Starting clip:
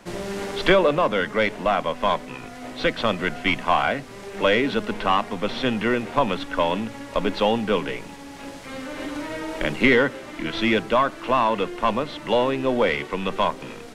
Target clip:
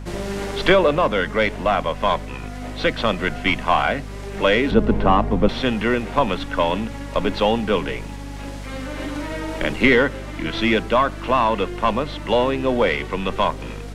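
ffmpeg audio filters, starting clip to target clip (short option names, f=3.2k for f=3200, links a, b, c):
-filter_complex "[0:a]aeval=exprs='val(0)+0.02*(sin(2*PI*50*n/s)+sin(2*PI*2*50*n/s)/2+sin(2*PI*3*50*n/s)/3+sin(2*PI*4*50*n/s)/4+sin(2*PI*5*50*n/s)/5)':c=same,asettb=1/sr,asplit=3[a][b][c];[a]atrim=end=4.714[d];[b]atrim=start=4.71:end=5.49,asetpts=PTS-STARTPTS,afade=t=in:d=0.004:c=qsin,afade=t=out:st=0.776:d=0.004:c=qsin,tiltshelf=f=1.1k:g=9[e];[c]atrim=start=5.486[f];[d][e]acrossfade=d=0.004:c1=hsin:c2=qsin[g];[g][f]acrossfade=d=0.004:c1=qsin:c2=hsin,volume=2dB"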